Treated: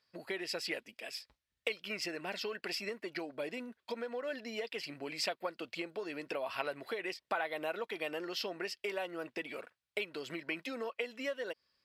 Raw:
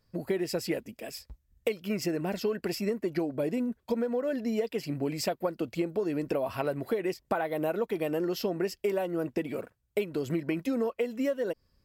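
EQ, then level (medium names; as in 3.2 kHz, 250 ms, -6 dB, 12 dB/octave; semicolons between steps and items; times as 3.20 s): band-pass filter 5.7 kHz, Q 0.67; distance through air 52 m; peaking EQ 6.8 kHz -11 dB 0.96 oct; +9.0 dB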